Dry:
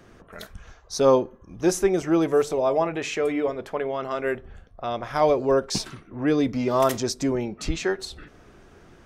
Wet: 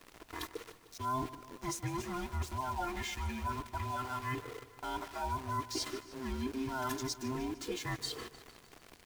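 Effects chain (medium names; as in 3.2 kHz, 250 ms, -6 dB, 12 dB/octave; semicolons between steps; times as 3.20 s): every band turned upside down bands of 500 Hz; high-pass 51 Hz 6 dB/octave; comb 2.9 ms, depth 87%; reverse; compression 5:1, threshold -34 dBFS, peak gain reduction 22 dB; reverse; small samples zeroed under -42.5 dBFS; added noise pink -63 dBFS; on a send: feedback delay 151 ms, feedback 58%, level -16 dB; on the sum: trim -2 dB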